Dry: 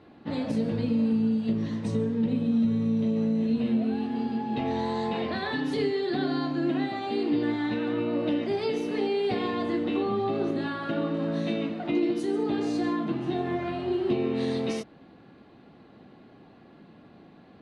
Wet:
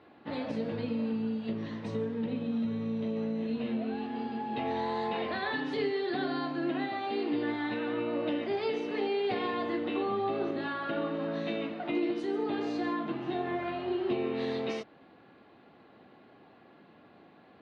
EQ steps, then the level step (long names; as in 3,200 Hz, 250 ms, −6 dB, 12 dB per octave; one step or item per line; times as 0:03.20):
high-pass filter 100 Hz
low-pass filter 3,600 Hz 12 dB per octave
parametric band 170 Hz −9 dB 2.1 octaves
0.0 dB